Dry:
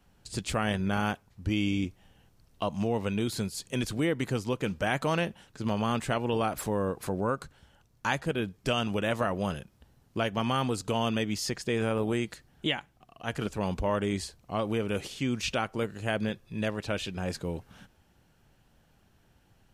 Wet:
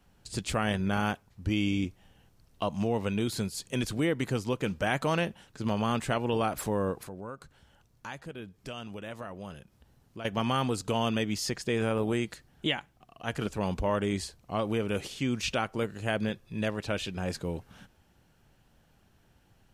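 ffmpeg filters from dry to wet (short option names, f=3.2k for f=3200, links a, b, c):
-filter_complex "[0:a]asettb=1/sr,asplit=3[a][b][c];[a]atrim=end=7.034[d];[b]atrim=start=7.03:end=10.25,asetpts=PTS-STARTPTS,afade=t=in:d=0.004:c=qsin,afade=t=out:st=3.216:d=0.004:c=qsin,acompressor=threshold=-58dB:ratio=1.5:attack=3.2:release=140:knee=1:detection=peak[e];[c]atrim=start=10.246[f];[d][e]acrossfade=d=0.004:c1=hsin:c2=qsin[g];[g][f]acrossfade=d=0.004:c1=qsin:c2=hsin"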